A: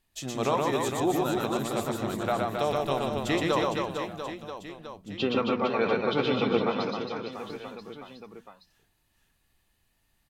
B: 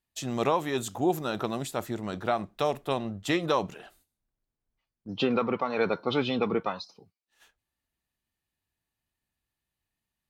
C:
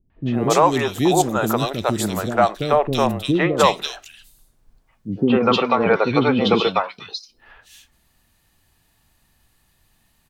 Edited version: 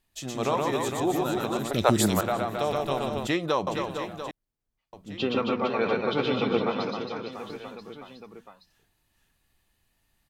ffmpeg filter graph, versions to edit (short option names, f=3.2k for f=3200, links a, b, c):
-filter_complex "[1:a]asplit=2[a][b];[0:a]asplit=4[c][d][e][f];[c]atrim=end=1.712[g];[2:a]atrim=start=1.708:end=2.212[h];[d]atrim=start=2.208:end=3.272[i];[a]atrim=start=3.268:end=3.672[j];[e]atrim=start=3.668:end=4.312[k];[b]atrim=start=4.308:end=4.932[l];[f]atrim=start=4.928[m];[g][h]acrossfade=d=0.004:c1=hsin:c2=hsin[n];[n][i]acrossfade=d=0.004:c1=hsin:c2=hsin[o];[o][j]acrossfade=d=0.004:c1=hsin:c2=hsin[p];[p][k]acrossfade=d=0.004:c1=hsin:c2=hsin[q];[q][l]acrossfade=d=0.004:c1=hsin:c2=hsin[r];[r][m]acrossfade=d=0.004:c1=hsin:c2=hsin"